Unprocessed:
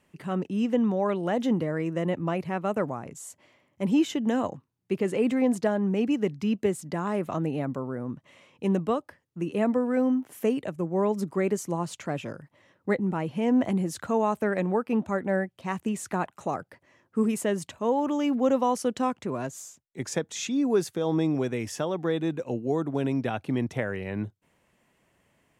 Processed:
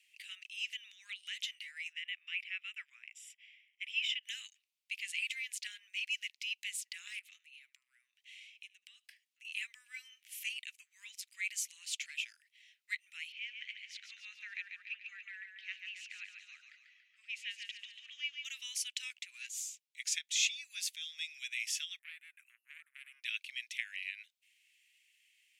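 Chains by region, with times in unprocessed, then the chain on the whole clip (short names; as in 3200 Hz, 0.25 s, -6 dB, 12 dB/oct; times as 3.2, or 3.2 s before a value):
1.92–4.23 polynomial smoothing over 25 samples + tilt +2 dB/oct
7.19–9.45 low shelf 120 Hz +9.5 dB + compressor 10:1, threshold -35 dBFS + echo 76 ms -23 dB
13.32–18.45 HPF 1200 Hz 24 dB/oct + air absorption 230 m + feedback echo 0.142 s, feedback 51%, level -6 dB
21.99–23.24 EQ curve 1700 Hz 0 dB, 3900 Hz -28 dB, 6200 Hz -26 dB, 9500 Hz 0 dB + core saturation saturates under 650 Hz
whole clip: steep high-pass 2300 Hz 48 dB/oct; high shelf 3400 Hz -11.5 dB; gain +11 dB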